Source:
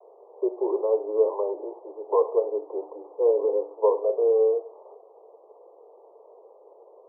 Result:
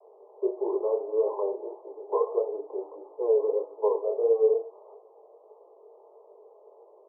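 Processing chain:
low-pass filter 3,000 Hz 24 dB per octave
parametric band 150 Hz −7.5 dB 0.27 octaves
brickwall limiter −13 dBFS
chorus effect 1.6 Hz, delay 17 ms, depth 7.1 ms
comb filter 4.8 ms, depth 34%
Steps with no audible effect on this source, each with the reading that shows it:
low-pass filter 3,000 Hz: nothing at its input above 1,100 Hz
parametric band 150 Hz: nothing at its input below 300 Hz

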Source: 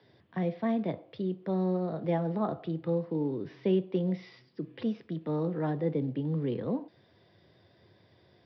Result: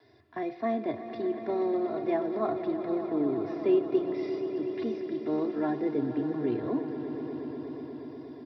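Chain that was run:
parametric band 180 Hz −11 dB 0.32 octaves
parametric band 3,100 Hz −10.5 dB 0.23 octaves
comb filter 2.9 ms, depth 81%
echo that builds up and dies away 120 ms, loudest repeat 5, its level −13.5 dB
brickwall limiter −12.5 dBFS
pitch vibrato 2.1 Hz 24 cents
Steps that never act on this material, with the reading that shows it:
brickwall limiter −12.5 dBFS: peak of its input −14.0 dBFS

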